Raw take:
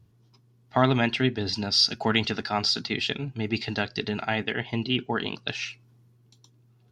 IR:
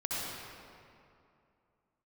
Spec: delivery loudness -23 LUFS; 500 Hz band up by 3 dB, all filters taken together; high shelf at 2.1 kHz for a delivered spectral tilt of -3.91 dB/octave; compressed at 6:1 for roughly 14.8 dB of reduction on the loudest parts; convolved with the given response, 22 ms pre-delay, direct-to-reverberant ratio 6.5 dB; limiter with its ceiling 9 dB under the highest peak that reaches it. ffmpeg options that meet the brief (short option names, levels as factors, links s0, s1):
-filter_complex "[0:a]equalizer=f=500:t=o:g=3.5,highshelf=f=2100:g=7.5,acompressor=threshold=0.0447:ratio=6,alimiter=limit=0.1:level=0:latency=1,asplit=2[s0][s1];[1:a]atrim=start_sample=2205,adelay=22[s2];[s1][s2]afir=irnorm=-1:irlink=0,volume=0.237[s3];[s0][s3]amix=inputs=2:normalize=0,volume=2.82"